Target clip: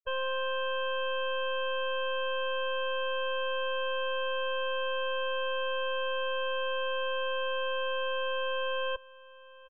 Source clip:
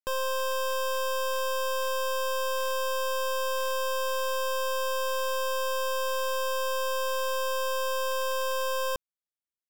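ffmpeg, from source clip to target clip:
ffmpeg -i in.wav -af "afftfilt=real='re*gte(hypot(re,im),0.0501)':imag='im*gte(hypot(re,im),0.0501)':win_size=1024:overlap=0.75,tiltshelf=frequency=1100:gain=-4,bandreject=frequency=1100:width=10,aecho=1:1:912:0.0891" out.wav

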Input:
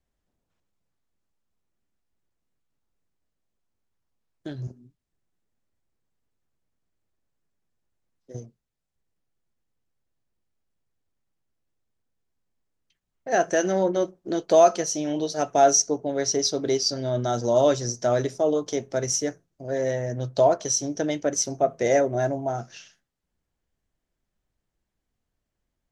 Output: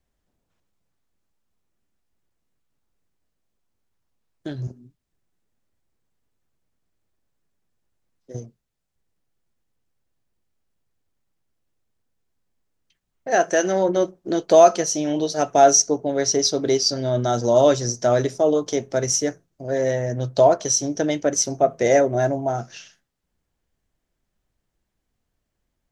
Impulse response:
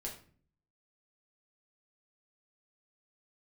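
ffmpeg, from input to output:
-filter_complex "[0:a]asettb=1/sr,asplit=3[link_01][link_02][link_03];[link_01]atrim=end=13.304[link_04];[link_02]atrim=start=13.3:end=13.89,asetpts=PTS-STARTPTS,afade=type=in:duration=0.004:curve=qsin,afade=type=out:start_time=0.586:duration=0.004:curve=qsin,lowshelf=frequency=190:gain=-8.5[link_05];[link_03]atrim=start=13.886[link_06];[link_04][link_05]acrossfade=duration=0.004:curve1=hsin:curve2=qsin[link_07];[link_07][link_06]acrossfade=duration=0.004:curve1=qsin:curve2=hsin,volume=4dB"

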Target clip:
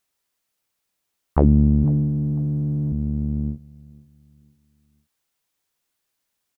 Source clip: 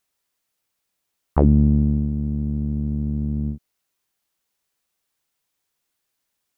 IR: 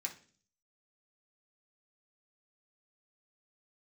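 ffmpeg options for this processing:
-filter_complex "[0:a]asettb=1/sr,asplit=3[link_01][link_02][link_03];[link_01]atrim=end=1.834[link_04];[link_02]atrim=start=1.83:end=2.92,asetpts=PTS-STARTPTS,afade=type=in:duration=0.004:curve=qsin,afade=type=out:start_time=1.086:duration=0.004:curve=qsin,aecho=1:1:7.3:0.93,atrim=end_sample=48069[link_05];[link_03]atrim=start=2.916[link_06];[link_04][link_05]acrossfade=duration=0.004:curve1=hsin:curve2=qsin[link_07];[link_07][link_06]acrossfade=duration=0.004:curve1=qsin:curve2=hsin,asplit=2[link_08][link_09];[link_09]adelay=498,lowpass=frequency=2000:poles=1,volume=-22dB,asplit=2[link_10][link_11];[link_11]adelay=498,lowpass=frequency=2000:poles=1,volume=0.37,asplit=2[link_12][link_13];[link_13]adelay=498,lowpass=frequency=2000:poles=1,volume=0.37[link_14];[link_08][link_10][link_12][link_14]amix=inputs=4:normalize=0"

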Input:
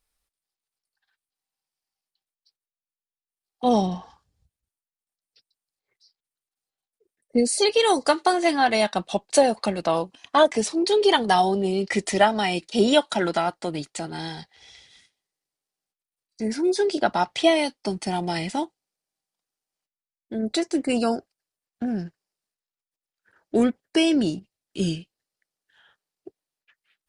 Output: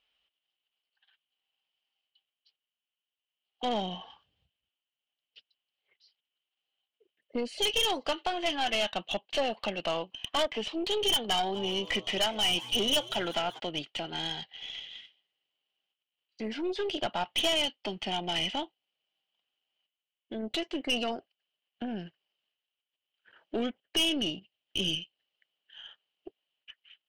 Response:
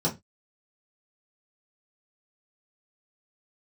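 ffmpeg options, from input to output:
-filter_complex "[0:a]highpass=frequency=190:poles=1,equalizer=frequency=640:width_type=o:width=0.7:gain=4,acompressor=threshold=-43dB:ratio=1.5,lowpass=frequency=3000:width_type=q:width=13,aeval=exprs='(tanh(14.1*val(0)+0.4)-tanh(0.4))/14.1':channel_layout=same,asplit=3[link_01][link_02][link_03];[link_01]afade=type=out:start_time=11.54:duration=0.02[link_04];[link_02]asplit=5[link_05][link_06][link_07][link_08][link_09];[link_06]adelay=192,afreqshift=120,volume=-17dB[link_10];[link_07]adelay=384,afreqshift=240,volume=-22.8dB[link_11];[link_08]adelay=576,afreqshift=360,volume=-28.7dB[link_12];[link_09]adelay=768,afreqshift=480,volume=-34.5dB[link_13];[link_05][link_10][link_11][link_12][link_13]amix=inputs=5:normalize=0,afade=type=in:start_time=11.54:duration=0.02,afade=type=out:start_time=13.58:duration=0.02[link_14];[link_03]afade=type=in:start_time=13.58:duration=0.02[link_15];[link_04][link_14][link_15]amix=inputs=3:normalize=0"

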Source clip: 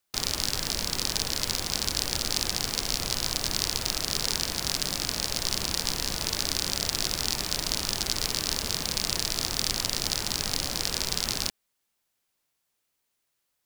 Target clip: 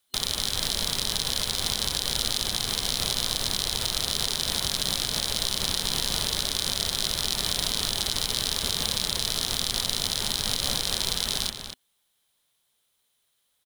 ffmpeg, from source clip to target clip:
ffmpeg -i in.wav -filter_complex "[0:a]alimiter=limit=-12.5dB:level=0:latency=1:release=86,superequalizer=6b=0.631:13b=2.51:16b=1.78,asplit=2[link_01][link_02];[link_02]adelay=239.1,volume=-7dB,highshelf=frequency=4000:gain=-5.38[link_03];[link_01][link_03]amix=inputs=2:normalize=0,volume=3dB" out.wav

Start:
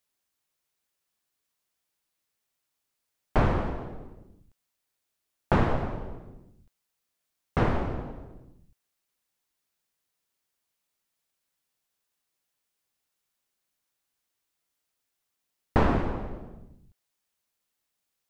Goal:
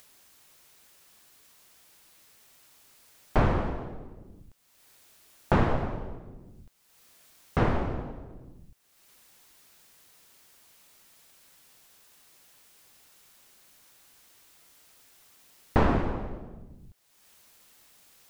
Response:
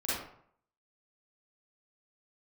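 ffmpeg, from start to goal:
-af "acompressor=mode=upward:threshold=-39dB:ratio=2.5"

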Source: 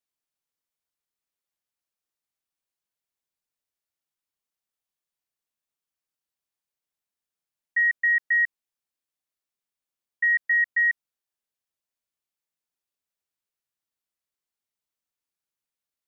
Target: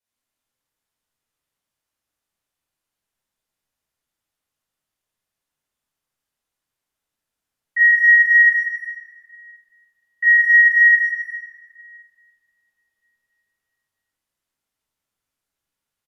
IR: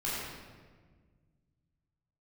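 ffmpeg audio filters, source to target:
-filter_complex "[0:a]asplit=2[link_01][link_02];[link_02]adelay=160,highpass=300,lowpass=3400,asoftclip=type=hard:threshold=-26.5dB,volume=-24dB[link_03];[link_01][link_03]amix=inputs=2:normalize=0[link_04];[1:a]atrim=start_sample=2205,asetrate=29106,aresample=44100[link_05];[link_04][link_05]afir=irnorm=-1:irlink=0"

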